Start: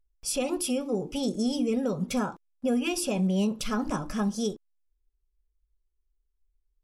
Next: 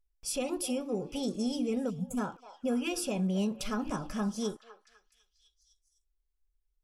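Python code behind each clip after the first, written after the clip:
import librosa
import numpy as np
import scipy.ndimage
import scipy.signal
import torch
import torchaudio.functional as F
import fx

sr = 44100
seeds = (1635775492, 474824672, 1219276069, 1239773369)

y = fx.spec_box(x, sr, start_s=1.9, length_s=0.28, low_hz=280.0, high_hz=6300.0, gain_db=-29)
y = fx.echo_stepped(y, sr, ms=252, hz=760.0, octaves=0.7, feedback_pct=70, wet_db=-11.0)
y = y * 10.0 ** (-4.5 / 20.0)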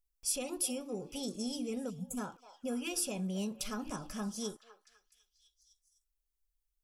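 y = fx.high_shelf(x, sr, hz=4600.0, db=11.5)
y = y * 10.0 ** (-6.5 / 20.0)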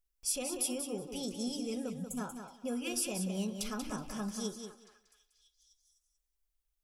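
y = fx.echo_feedback(x, sr, ms=186, feedback_pct=16, wet_db=-7.5)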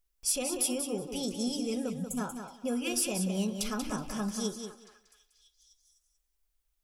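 y = np.clip(x, -10.0 ** (-25.0 / 20.0), 10.0 ** (-25.0 / 20.0))
y = y * 10.0 ** (4.5 / 20.0)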